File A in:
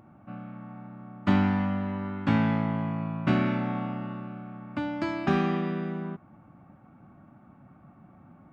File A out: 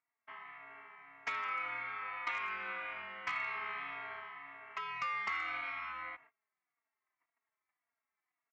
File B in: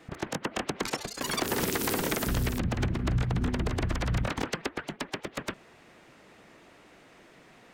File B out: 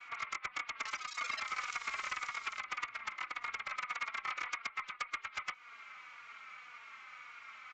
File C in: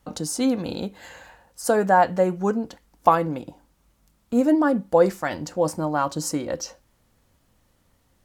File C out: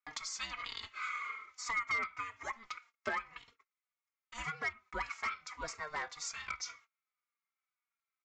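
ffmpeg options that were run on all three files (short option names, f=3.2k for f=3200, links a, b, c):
-filter_complex "[0:a]highpass=f=1.7k:t=q:w=8.9,acompressor=threshold=-34dB:ratio=3,aeval=exprs='val(0)*sin(2*PI*460*n/s)':c=same,aresample=16000,volume=27dB,asoftclip=hard,volume=-27dB,aresample=44100,agate=range=-28dB:threshold=-58dB:ratio=16:detection=peak,asplit=2[a][b];[b]adelay=3.6,afreqshift=-1.8[c];[a][c]amix=inputs=2:normalize=1,volume=2.5dB"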